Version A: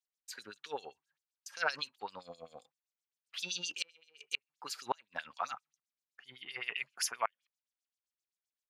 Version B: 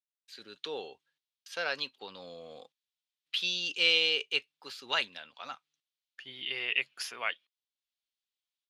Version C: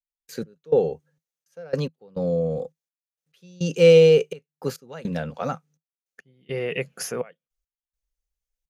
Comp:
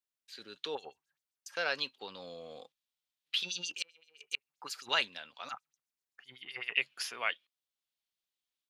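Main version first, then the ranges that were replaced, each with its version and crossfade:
B
0.75–1.57 from A
3.43–4.89 from A
5.49–6.77 from A
not used: C

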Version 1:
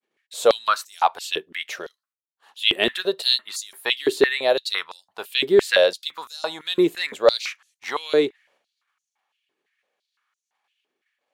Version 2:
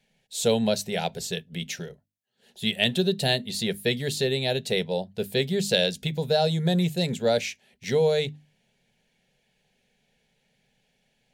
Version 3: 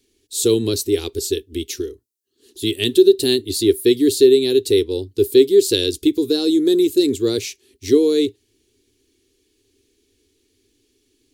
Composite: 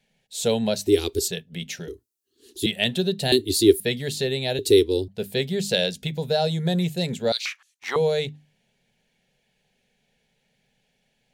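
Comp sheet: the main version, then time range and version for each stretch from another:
2
0.87–1.28 from 3
1.88–2.66 from 3
3.32–3.8 from 3
4.59–5.08 from 3
7.32–7.96 from 1

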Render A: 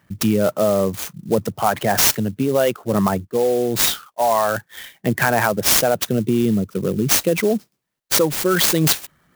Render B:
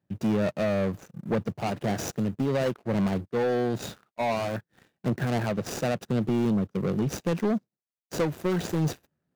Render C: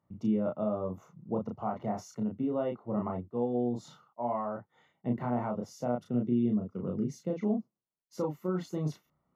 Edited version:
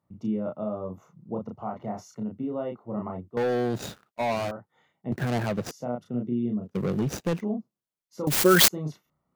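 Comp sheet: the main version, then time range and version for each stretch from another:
C
3.37–4.51 from B
5.12–5.71 from B
6.68–7.39 from B, crossfade 0.10 s
8.27–8.68 from A

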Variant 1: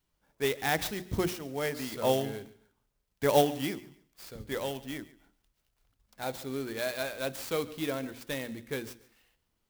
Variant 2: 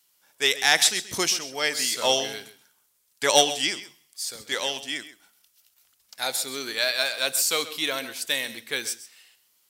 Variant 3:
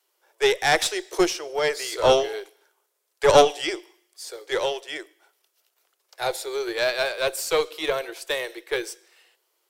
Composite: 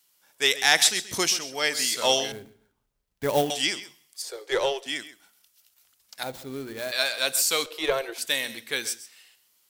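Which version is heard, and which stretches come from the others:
2
2.32–3.5 from 1
4.22–4.86 from 3
6.23–6.92 from 1
7.66–8.18 from 3

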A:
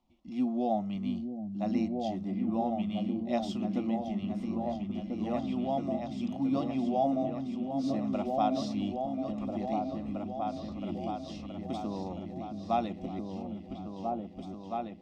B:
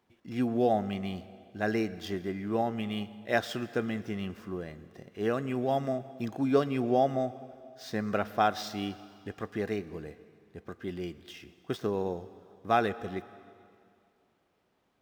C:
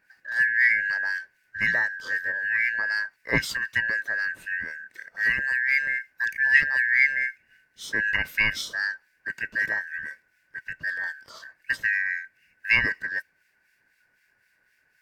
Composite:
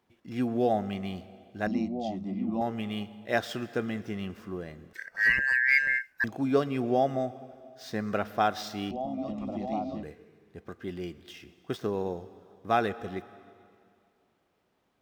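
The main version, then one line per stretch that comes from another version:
B
1.67–2.61 from A
4.93–6.24 from C
8.91–10.03 from A

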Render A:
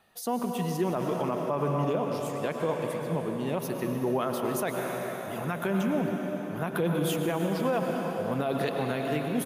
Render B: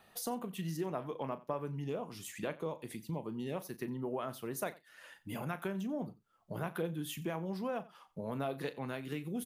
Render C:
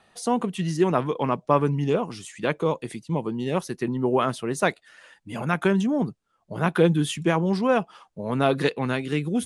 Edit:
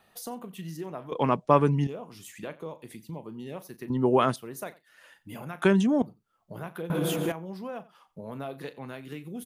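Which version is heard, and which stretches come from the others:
B
1.12–1.87 from C
3.9–4.36 from C
5.62–6.02 from C
6.9–7.32 from A

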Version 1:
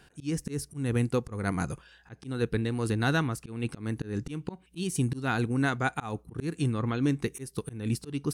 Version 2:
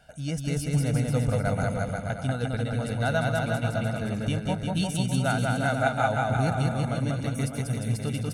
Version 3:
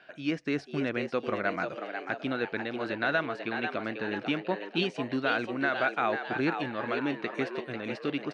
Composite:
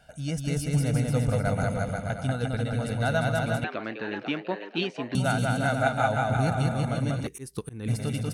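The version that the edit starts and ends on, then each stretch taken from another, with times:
2
3.64–5.15 from 3
7.27–7.88 from 1

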